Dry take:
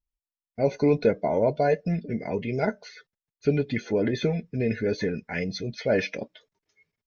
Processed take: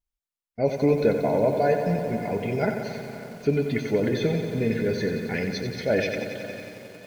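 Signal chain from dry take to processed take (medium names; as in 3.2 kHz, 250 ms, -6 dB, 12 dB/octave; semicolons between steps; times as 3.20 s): echo that smears into a reverb 566 ms, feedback 48%, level -14 dB; bit-crushed delay 91 ms, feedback 80%, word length 8-bit, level -8 dB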